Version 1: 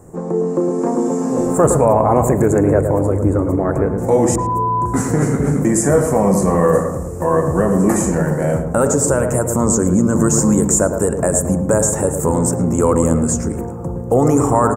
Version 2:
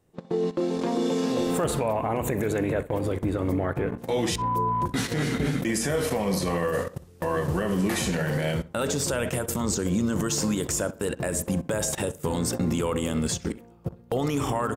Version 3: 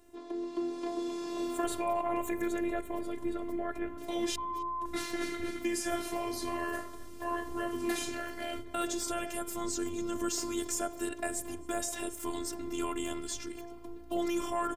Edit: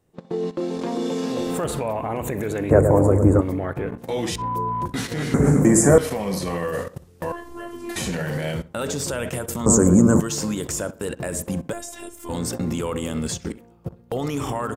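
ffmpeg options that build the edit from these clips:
-filter_complex "[0:a]asplit=3[a][b][c];[2:a]asplit=2[d][e];[1:a]asplit=6[f][g][h][i][j][k];[f]atrim=end=2.712[l];[a]atrim=start=2.708:end=3.412[m];[g]atrim=start=3.408:end=5.342[n];[b]atrim=start=5.338:end=5.982[o];[h]atrim=start=5.978:end=7.322[p];[d]atrim=start=7.318:end=7.962[q];[i]atrim=start=7.958:end=9.662[r];[c]atrim=start=9.658:end=10.202[s];[j]atrim=start=10.198:end=11.732[t];[e]atrim=start=11.728:end=12.292[u];[k]atrim=start=12.288[v];[l][m]acrossfade=d=0.004:c1=hsin:c2=hsin[w];[w][n]acrossfade=d=0.004:c1=hsin:c2=hsin[x];[x][o]acrossfade=d=0.004:c1=hsin:c2=hsin[y];[y][p]acrossfade=d=0.004:c1=hsin:c2=hsin[z];[z][q]acrossfade=d=0.004:c1=hsin:c2=hsin[aa];[aa][r]acrossfade=d=0.004:c1=hsin:c2=hsin[ab];[ab][s]acrossfade=d=0.004:c1=hsin:c2=hsin[ac];[ac][t]acrossfade=d=0.004:c1=hsin:c2=hsin[ad];[ad][u]acrossfade=d=0.004:c1=hsin:c2=hsin[ae];[ae][v]acrossfade=d=0.004:c1=hsin:c2=hsin"

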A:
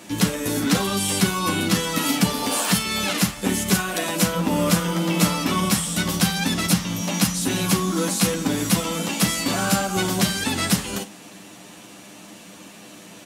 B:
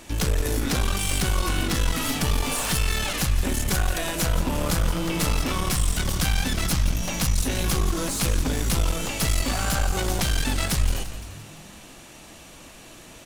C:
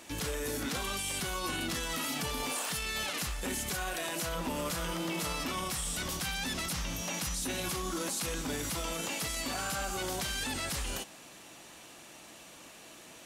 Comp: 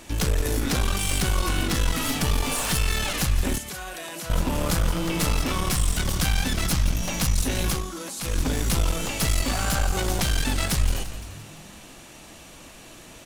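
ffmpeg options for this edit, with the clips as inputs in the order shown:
-filter_complex "[2:a]asplit=2[a][b];[1:a]asplit=3[c][d][e];[c]atrim=end=3.582[f];[a]atrim=start=3.578:end=4.302[g];[d]atrim=start=4.298:end=7.91[h];[b]atrim=start=7.67:end=8.41[i];[e]atrim=start=8.17[j];[f][g]acrossfade=d=0.004:c1=hsin:c2=hsin[k];[k][h]acrossfade=d=0.004:c1=hsin:c2=hsin[l];[l][i]acrossfade=d=0.24:c1=tri:c2=tri[m];[m][j]acrossfade=d=0.24:c1=tri:c2=tri"

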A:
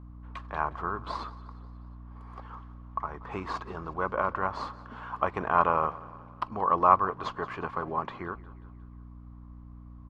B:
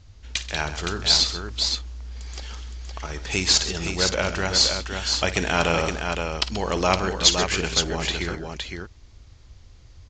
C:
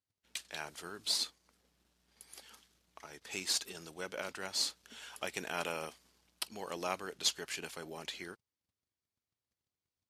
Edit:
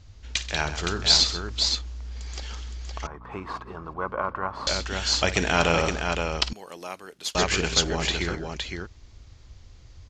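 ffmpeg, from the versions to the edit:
-filter_complex "[1:a]asplit=3[a][b][c];[a]atrim=end=3.072[d];[0:a]atrim=start=3.068:end=4.672[e];[b]atrim=start=4.668:end=6.532[f];[2:a]atrim=start=6.528:end=7.352[g];[c]atrim=start=7.348[h];[d][e]acrossfade=d=0.004:c1=hsin:c2=hsin[i];[i][f]acrossfade=d=0.004:c1=hsin:c2=hsin[j];[j][g]acrossfade=d=0.004:c1=hsin:c2=hsin[k];[k][h]acrossfade=d=0.004:c1=hsin:c2=hsin"

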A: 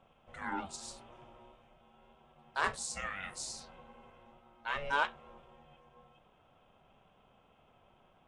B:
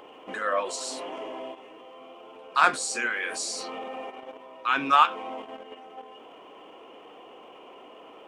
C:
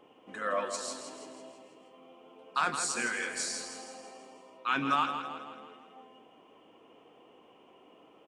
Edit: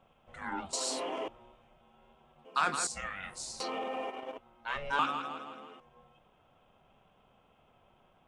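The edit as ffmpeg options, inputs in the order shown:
-filter_complex "[1:a]asplit=2[a][b];[2:a]asplit=2[c][d];[0:a]asplit=5[e][f][g][h][i];[e]atrim=end=0.732[j];[a]atrim=start=0.728:end=1.282[k];[f]atrim=start=1.278:end=2.452[l];[c]atrim=start=2.448:end=2.872[m];[g]atrim=start=2.868:end=3.602[n];[b]atrim=start=3.598:end=4.382[o];[h]atrim=start=4.378:end=4.992[p];[d]atrim=start=4.988:end=5.802[q];[i]atrim=start=5.798[r];[j][k]acrossfade=d=0.004:c1=hsin:c2=hsin[s];[s][l]acrossfade=d=0.004:c1=hsin:c2=hsin[t];[t][m]acrossfade=d=0.004:c1=hsin:c2=hsin[u];[u][n]acrossfade=d=0.004:c1=hsin:c2=hsin[v];[v][o]acrossfade=d=0.004:c1=hsin:c2=hsin[w];[w][p]acrossfade=d=0.004:c1=hsin:c2=hsin[x];[x][q]acrossfade=d=0.004:c1=hsin:c2=hsin[y];[y][r]acrossfade=d=0.004:c1=hsin:c2=hsin"

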